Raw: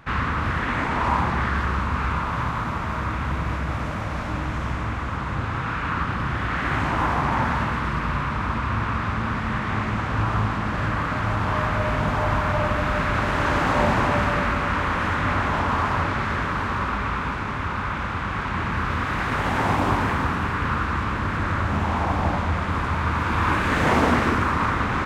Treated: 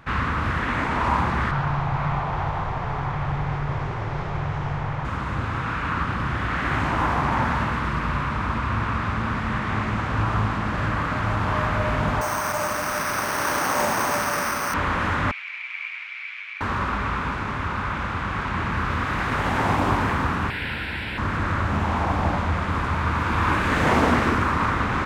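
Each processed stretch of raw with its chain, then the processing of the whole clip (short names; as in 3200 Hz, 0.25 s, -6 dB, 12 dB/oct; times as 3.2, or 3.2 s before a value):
1.51–5.05 frequency shift -210 Hz + air absorption 100 m
12.21–14.74 HPF 470 Hz 6 dB/oct + careless resampling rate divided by 6×, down none, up hold
15.31–16.61 minimum comb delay 9.5 ms + ladder band-pass 2400 Hz, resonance 85%
20.5–21.18 tilt shelf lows -7.5 dB, about 700 Hz + fixed phaser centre 2800 Hz, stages 4
whole clip: dry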